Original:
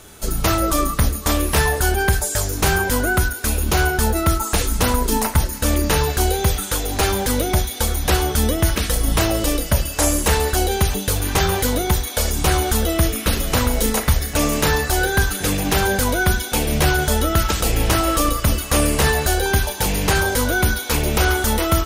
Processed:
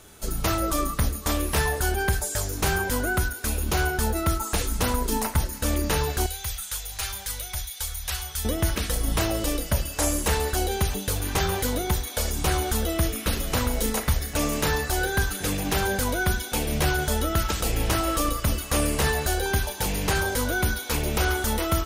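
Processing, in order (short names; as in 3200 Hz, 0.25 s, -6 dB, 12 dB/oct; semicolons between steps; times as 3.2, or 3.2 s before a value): 6.26–8.45 passive tone stack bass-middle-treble 10-0-10; gain -6.5 dB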